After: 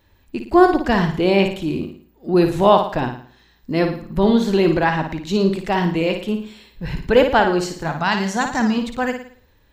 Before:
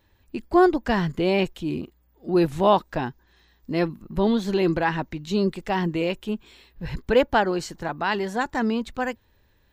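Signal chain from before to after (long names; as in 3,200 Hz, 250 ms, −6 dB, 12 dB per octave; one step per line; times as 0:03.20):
0:07.85–0:08.78: graphic EQ with 15 bands 160 Hz +8 dB, 400 Hz −8 dB, 6,300 Hz +11 dB
flutter between parallel walls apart 9.6 metres, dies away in 0.49 s
level +4.5 dB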